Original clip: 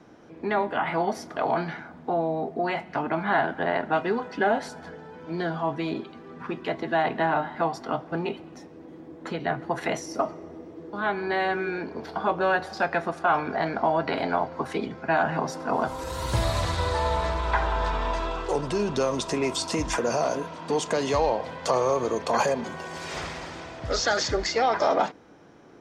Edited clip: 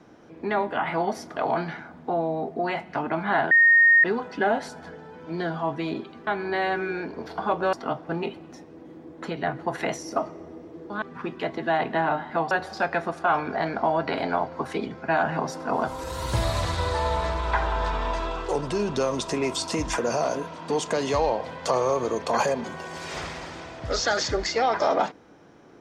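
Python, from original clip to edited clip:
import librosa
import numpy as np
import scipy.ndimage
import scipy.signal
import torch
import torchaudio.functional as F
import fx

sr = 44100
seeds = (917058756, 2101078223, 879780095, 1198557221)

y = fx.edit(x, sr, fx.bleep(start_s=3.51, length_s=0.53, hz=1850.0, db=-12.5),
    fx.swap(start_s=6.27, length_s=1.49, other_s=11.05, other_length_s=1.46), tone=tone)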